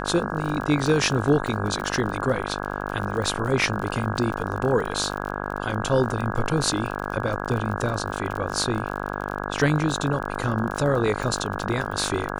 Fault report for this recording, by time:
buzz 50 Hz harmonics 33 -30 dBFS
crackle 32/s -29 dBFS

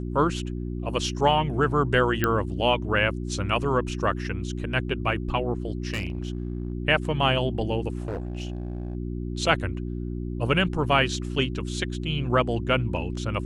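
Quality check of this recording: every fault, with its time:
hum 60 Hz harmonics 6 -31 dBFS
2.24 pop -8 dBFS
5.94–6.73 clipped -24 dBFS
8–8.95 clipped -26.5 dBFS

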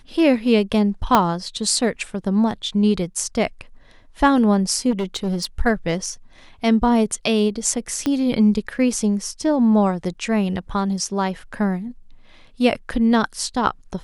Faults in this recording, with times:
1.15 pop -1 dBFS
4.9–5.45 clipped -19 dBFS
8.06 pop -9 dBFS

